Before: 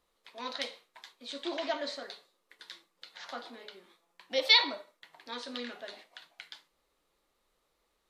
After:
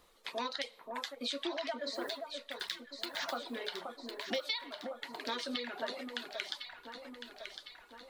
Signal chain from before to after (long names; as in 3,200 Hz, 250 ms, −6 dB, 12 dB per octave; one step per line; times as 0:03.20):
0:01.94–0:03.57: one scale factor per block 5 bits
downward compressor 16 to 1, threshold −45 dBFS, peak gain reduction 28 dB
reverb reduction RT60 1.9 s
delay that swaps between a low-pass and a high-pass 528 ms, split 1,400 Hz, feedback 73%, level −5 dB
level +11.5 dB